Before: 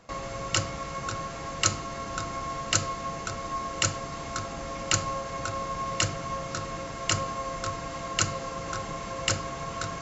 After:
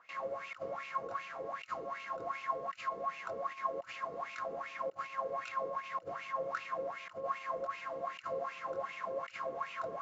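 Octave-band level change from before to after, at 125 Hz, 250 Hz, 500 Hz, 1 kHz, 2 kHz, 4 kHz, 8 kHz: −27.0 dB, −17.5 dB, −3.5 dB, −5.5 dB, −9.0 dB, −22.0 dB, can't be measured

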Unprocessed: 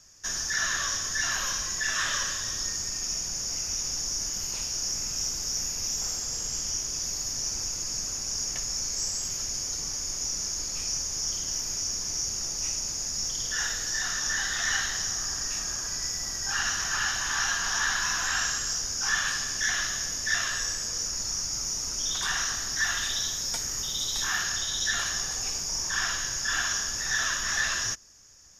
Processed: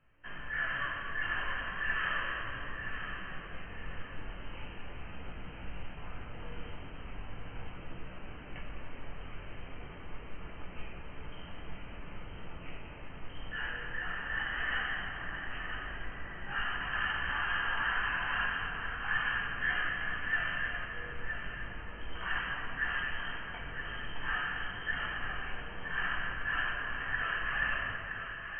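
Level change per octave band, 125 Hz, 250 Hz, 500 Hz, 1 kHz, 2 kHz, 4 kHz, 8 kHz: −1.0 dB, −1.5 dB, −1.5 dB, −2.0 dB, −2.0 dB, −15.0 dB, below −40 dB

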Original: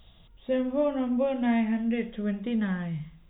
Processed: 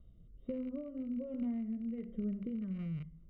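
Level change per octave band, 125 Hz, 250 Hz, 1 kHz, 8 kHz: −7.0 dB, −10.0 dB, below −25 dB, can't be measured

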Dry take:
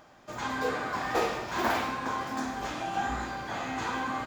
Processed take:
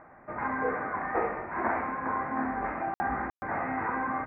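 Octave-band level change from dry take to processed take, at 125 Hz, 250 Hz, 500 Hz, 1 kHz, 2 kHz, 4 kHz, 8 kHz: −2.0 dB, +0.5 dB, 0.0 dB, +1.0 dB, 0.0 dB, below −30 dB, below −30 dB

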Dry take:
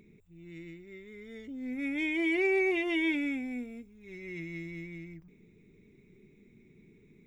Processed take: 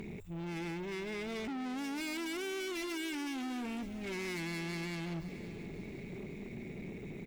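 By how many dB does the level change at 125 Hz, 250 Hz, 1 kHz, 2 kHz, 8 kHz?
+5.5 dB, −4.0 dB, +2.0 dB, −7.5 dB, can't be measured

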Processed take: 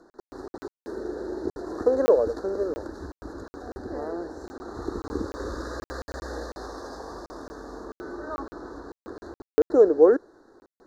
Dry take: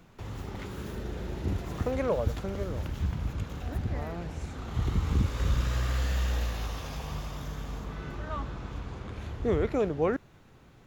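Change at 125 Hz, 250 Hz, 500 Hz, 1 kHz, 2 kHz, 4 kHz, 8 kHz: −14.0, +4.0, +10.0, +2.5, −0.5, −5.5, −3.0 decibels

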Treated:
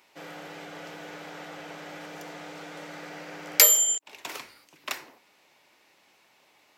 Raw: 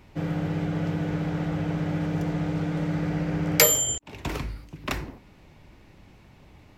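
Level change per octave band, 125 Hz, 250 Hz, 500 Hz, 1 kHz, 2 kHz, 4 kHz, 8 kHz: −26.5, −18.5, −8.0, −4.5, −2.0, +0.5, +2.5 decibels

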